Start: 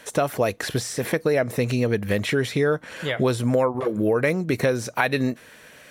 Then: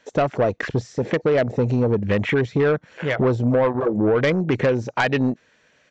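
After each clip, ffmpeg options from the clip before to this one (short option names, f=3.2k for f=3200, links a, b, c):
-af "afwtdn=0.0316,aresample=16000,asoftclip=type=tanh:threshold=-17dB,aresample=44100,volume=5dB"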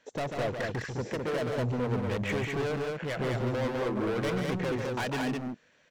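-af "asoftclip=type=hard:threshold=-22dB,aecho=1:1:142.9|207:0.501|0.708,volume=-8dB"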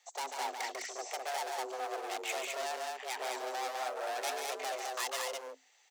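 -af "bass=f=250:g=-10,treble=f=4k:g=15,afreqshift=260,volume=-5.5dB"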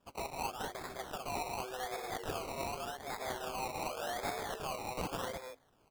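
-af "acrusher=samples=21:mix=1:aa=0.000001:lfo=1:lforange=12.6:lforate=0.87,volume=-2dB"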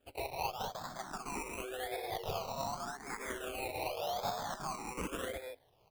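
-filter_complex "[0:a]asplit=2[a][b];[b]afreqshift=0.56[c];[a][c]amix=inputs=2:normalize=1,volume=3dB"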